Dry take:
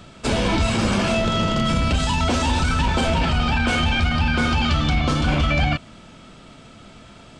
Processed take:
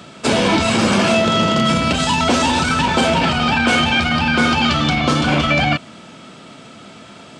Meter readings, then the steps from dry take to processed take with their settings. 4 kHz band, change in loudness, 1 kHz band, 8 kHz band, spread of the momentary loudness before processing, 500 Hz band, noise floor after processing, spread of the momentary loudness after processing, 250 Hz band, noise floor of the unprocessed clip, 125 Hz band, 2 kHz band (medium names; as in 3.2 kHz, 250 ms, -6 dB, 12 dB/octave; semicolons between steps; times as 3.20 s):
+6.5 dB, +5.0 dB, +6.5 dB, +6.5 dB, 1 LU, +6.5 dB, -40 dBFS, 2 LU, +5.5 dB, -45 dBFS, -0.5 dB, +6.5 dB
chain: high-pass 160 Hz 12 dB/octave; trim +6.5 dB